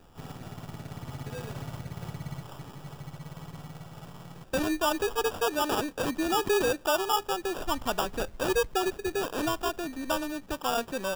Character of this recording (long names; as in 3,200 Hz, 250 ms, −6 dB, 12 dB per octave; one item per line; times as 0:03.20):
aliases and images of a low sample rate 2,100 Hz, jitter 0%